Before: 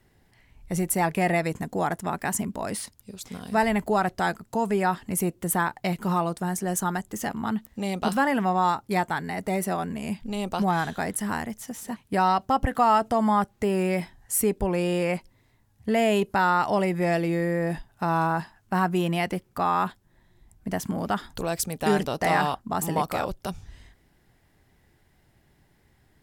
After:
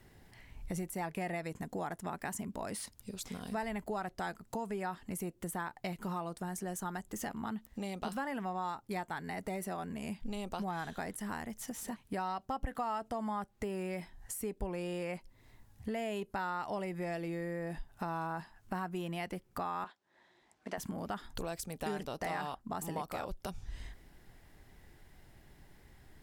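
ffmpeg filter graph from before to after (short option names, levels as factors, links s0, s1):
-filter_complex "[0:a]asettb=1/sr,asplit=3[s0][s1][s2];[s0]atrim=end=19.844[s3];[s1]atrim=start=19.84:end=20.78,asetpts=PTS-STARTPTS,afade=t=in:d=0.004:c=qsin,afade=t=out:st=0.936:d=0.004:c=qsin,acrusher=bits=8:mode=log:mix=0:aa=0.000001,highpass=430,lowpass=5300[s4];[s2]atrim=start=20.776[s5];[s3][s4]acrossfade=d=0.004:c1=hsin:c2=qsin[s6];[s6][s5]acrossfade=d=0.004:c1=qsin:c2=hsin,acompressor=threshold=0.00708:ratio=3,asubboost=boost=2:cutoff=57,deesser=0.75,volume=1.33"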